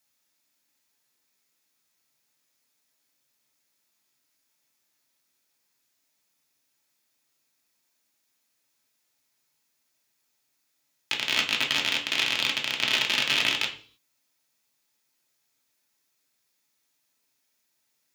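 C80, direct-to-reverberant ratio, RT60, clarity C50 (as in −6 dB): 15.5 dB, −0.5 dB, 0.45 s, 10.5 dB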